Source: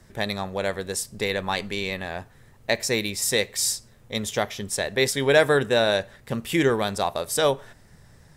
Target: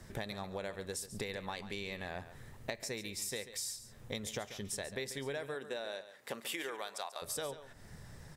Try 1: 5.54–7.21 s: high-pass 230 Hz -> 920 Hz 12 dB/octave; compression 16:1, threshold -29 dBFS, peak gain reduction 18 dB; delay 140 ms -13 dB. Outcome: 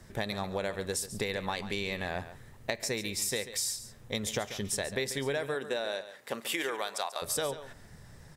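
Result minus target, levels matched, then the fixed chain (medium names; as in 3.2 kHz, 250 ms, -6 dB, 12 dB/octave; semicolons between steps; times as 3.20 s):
compression: peak gain reduction -7.5 dB
5.54–7.21 s: high-pass 230 Hz -> 920 Hz 12 dB/octave; compression 16:1, threshold -37 dBFS, peak gain reduction 25.5 dB; delay 140 ms -13 dB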